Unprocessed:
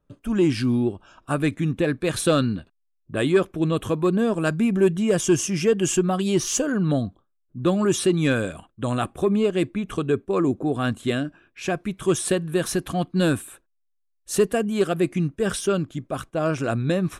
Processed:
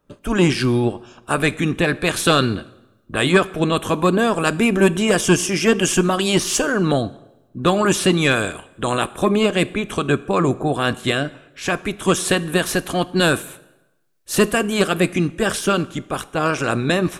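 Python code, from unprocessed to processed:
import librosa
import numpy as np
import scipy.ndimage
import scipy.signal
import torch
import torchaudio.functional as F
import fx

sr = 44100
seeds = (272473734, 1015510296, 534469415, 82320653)

y = fx.spec_clip(x, sr, under_db=14)
y = fx.rev_plate(y, sr, seeds[0], rt60_s=0.98, hf_ratio=0.85, predelay_ms=0, drr_db=16.5)
y = F.gain(torch.from_numpy(y), 4.0).numpy()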